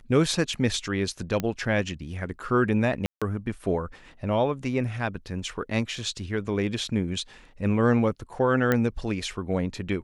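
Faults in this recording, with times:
1.40 s: pop -14 dBFS
3.06–3.22 s: dropout 156 ms
8.72 s: pop -10 dBFS

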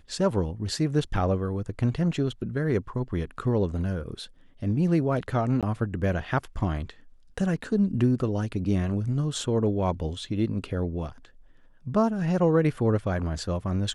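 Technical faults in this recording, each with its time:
5.61–5.63 s: dropout 17 ms

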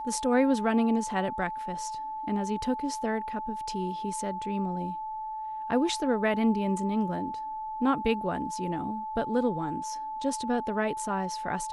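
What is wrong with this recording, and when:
whine 870 Hz -33 dBFS

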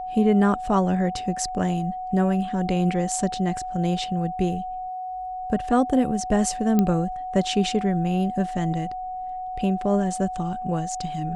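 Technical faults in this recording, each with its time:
whine 740 Hz -29 dBFS
6.79 s: pop -9 dBFS

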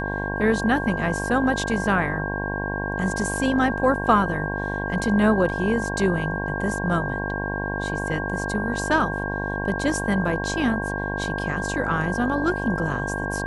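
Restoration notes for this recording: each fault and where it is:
buzz 50 Hz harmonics 22 -29 dBFS
whine 1.6 kHz -29 dBFS

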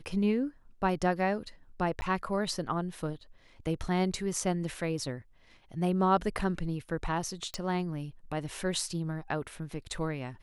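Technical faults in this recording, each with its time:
2.01–2.02 s: dropout 10 ms
7.54 s: pop

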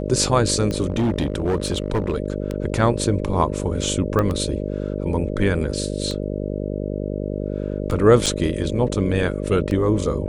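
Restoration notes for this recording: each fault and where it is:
buzz 50 Hz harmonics 12 -26 dBFS
tick 33 1/3 rpm -14 dBFS
0.88–2.16 s: clipped -16 dBFS
4.19 s: pop -10 dBFS
8.26–8.27 s: dropout 6 ms

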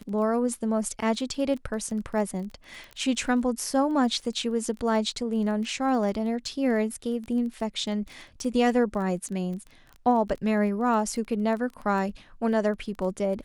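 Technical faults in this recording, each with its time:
crackle 16 per s -34 dBFS

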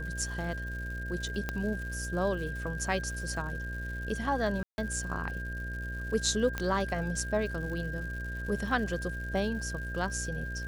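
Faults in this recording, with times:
buzz 60 Hz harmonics 11 -38 dBFS
crackle 220 per s -41 dBFS
whine 1.6 kHz -39 dBFS
1.49 s: pop -18 dBFS
4.63–4.78 s: dropout 151 ms
6.58 s: pop -17 dBFS

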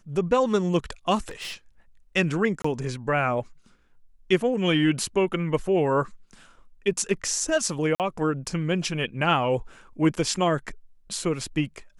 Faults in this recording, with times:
1.29–1.54 s: clipped -31 dBFS
2.62–2.64 s: dropout 24 ms
7.95–8.00 s: dropout 48 ms

